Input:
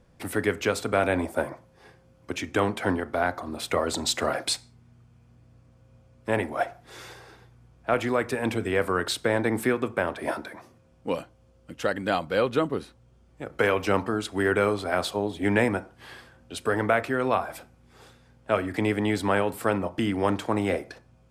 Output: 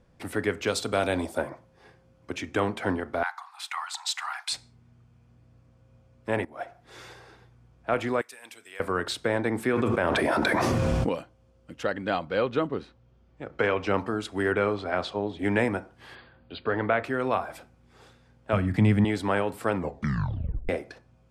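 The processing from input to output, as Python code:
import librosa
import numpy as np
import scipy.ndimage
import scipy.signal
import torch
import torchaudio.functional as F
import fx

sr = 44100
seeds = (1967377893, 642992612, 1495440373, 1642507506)

y = fx.high_shelf_res(x, sr, hz=2800.0, db=7.0, q=1.5, at=(0.67, 1.38))
y = fx.steep_highpass(y, sr, hz=790.0, slope=96, at=(3.23, 4.53))
y = fx.differentiator(y, sr, at=(8.21, 8.8))
y = fx.env_flatten(y, sr, amount_pct=100, at=(9.73, 11.09))
y = fx.lowpass(y, sr, hz=5300.0, slope=12, at=(11.83, 13.98))
y = fx.lowpass(y, sr, hz=4800.0, slope=12, at=(14.53, 15.39))
y = fx.brickwall_lowpass(y, sr, high_hz=4900.0, at=(16.14, 17.03), fade=0.02)
y = fx.low_shelf_res(y, sr, hz=250.0, db=11.5, q=1.5, at=(18.53, 19.05))
y = fx.edit(y, sr, fx.fade_in_from(start_s=6.45, length_s=0.53, floor_db=-16.5),
    fx.tape_stop(start_s=19.73, length_s=0.96), tone=tone)
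y = fx.high_shelf(y, sr, hz=11000.0, db=-11.5)
y = F.gain(torch.from_numpy(y), -2.0).numpy()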